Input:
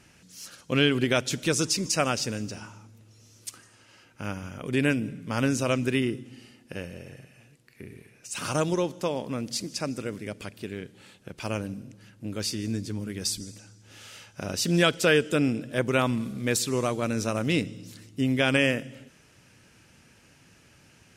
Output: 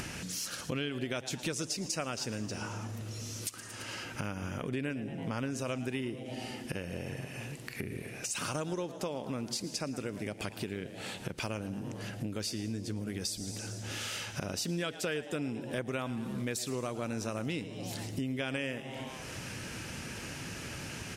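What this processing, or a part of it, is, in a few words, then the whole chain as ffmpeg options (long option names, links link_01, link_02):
upward and downward compression: -filter_complex "[0:a]asettb=1/sr,asplit=3[link_01][link_02][link_03];[link_01]atrim=end=4.624[link_04];[link_02]atrim=start=4.62:end=5.56,asetpts=PTS-STARTPTS,afade=type=in:duration=0.004:curve=qsin,afade=type=out:start_time=0.936:duration=0.004:curve=qsin,highshelf=frequency=4800:gain=-6[link_05];[link_03]atrim=start=5.556[link_06];[link_04][link_05]acrossfade=duration=0.004:curve1=hsin:curve2=qsin[link_07];[link_07][link_06]acrossfade=duration=0.004:curve1=qsin:curve2=hsin,asplit=5[link_08][link_09][link_10][link_11][link_12];[link_09]adelay=111,afreqshift=130,volume=-18dB[link_13];[link_10]adelay=222,afreqshift=260,volume=-24dB[link_14];[link_11]adelay=333,afreqshift=390,volume=-30dB[link_15];[link_12]adelay=444,afreqshift=520,volume=-36.1dB[link_16];[link_08][link_13][link_14][link_15][link_16]amix=inputs=5:normalize=0,acompressor=mode=upward:threshold=-27dB:ratio=2.5,acompressor=threshold=-33dB:ratio=5"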